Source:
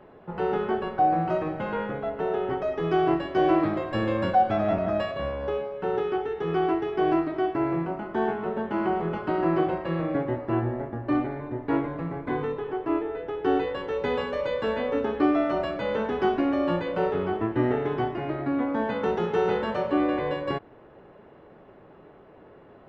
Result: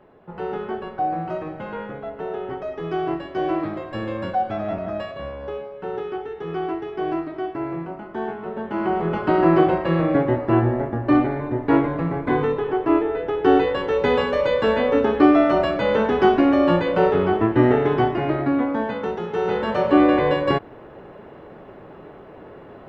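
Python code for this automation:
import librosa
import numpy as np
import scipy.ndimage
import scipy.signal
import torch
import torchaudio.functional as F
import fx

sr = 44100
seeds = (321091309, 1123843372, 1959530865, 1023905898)

y = fx.gain(x, sr, db=fx.line((8.42, -2.0), (9.3, 8.0), (18.36, 8.0), (19.23, -2.0), (19.95, 9.0)))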